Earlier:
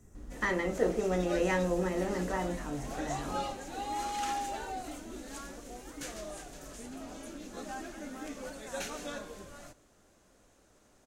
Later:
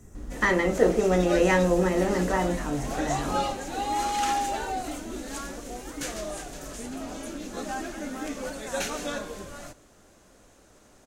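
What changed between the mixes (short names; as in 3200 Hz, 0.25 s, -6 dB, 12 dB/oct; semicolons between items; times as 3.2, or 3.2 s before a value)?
speech +8.0 dB; background +8.0 dB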